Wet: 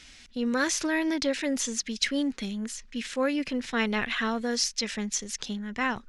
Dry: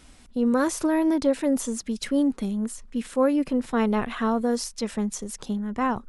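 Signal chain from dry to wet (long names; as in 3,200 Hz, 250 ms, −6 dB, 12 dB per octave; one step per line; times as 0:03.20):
flat-topped bell 3,300 Hz +14 dB 2.4 octaves
level −6 dB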